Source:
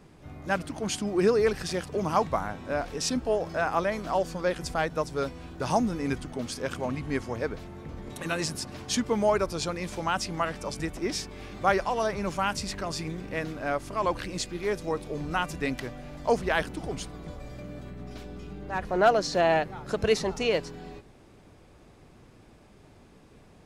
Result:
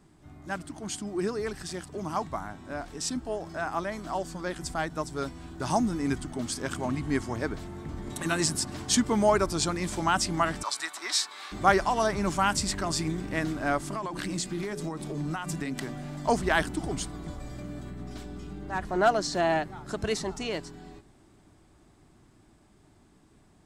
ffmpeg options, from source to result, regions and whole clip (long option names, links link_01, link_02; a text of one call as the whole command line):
ffmpeg -i in.wav -filter_complex "[0:a]asettb=1/sr,asplit=3[link_01][link_02][link_03];[link_01]atrim=end=10.634[link_04];[link_02]atrim=start=10.63:end=11.52,asetpts=PTS-STARTPTS,afade=type=in:duration=0.004:curve=qsin,afade=type=out:start_time=0.886:duration=0.004:curve=qsin,highpass=frequency=1100:width_type=q:width=1.8,equalizer=frequency=4000:width=4.9:gain=11[link_05];[link_03]atrim=start=11.516[link_06];[link_04][link_05]acrossfade=duration=0.004:curve1=hsin:curve2=qsin[link_07];[link_07][link_06]acrossfade=duration=0.004:curve1=qsin:curve2=hsin,asettb=1/sr,asplit=3[link_08][link_09][link_10];[link_08]atrim=end=13.814[link_11];[link_09]atrim=start=13.81:end=16.28,asetpts=PTS-STARTPTS,afade=type=in:duration=0.004:curve=qsin,afade=type=out:start_time=2.466:duration=0.004:curve=qsin,lowshelf=frequency=120:width_type=q:width=3:gain=-7,bandreject=frequency=60:width_type=h:width=6,bandreject=frequency=120:width_type=h:width=6,bandreject=frequency=180:width_type=h:width=6,bandreject=frequency=240:width_type=h:width=6,bandreject=frequency=300:width_type=h:width=6,bandreject=frequency=360:width_type=h:width=6,bandreject=frequency=420:width_type=h:width=6,acompressor=threshold=-31dB:ratio=12:attack=3.2:release=140:knee=1:detection=peak[link_12];[link_10]atrim=start=16.276[link_13];[link_11][link_12]acrossfade=duration=0.004:curve1=hsin:curve2=qsin[link_14];[link_14][link_13]acrossfade=duration=0.004:curve1=qsin:curve2=hsin,equalizer=frequency=315:width_type=o:width=0.33:gain=4,equalizer=frequency=500:width_type=o:width=0.33:gain=-11,equalizer=frequency=2500:width_type=o:width=0.33:gain=-5,equalizer=frequency=8000:width_type=o:width=0.33:gain=8,dynaudnorm=framelen=560:gausssize=21:maxgain=11.5dB,volume=-5.5dB" out.wav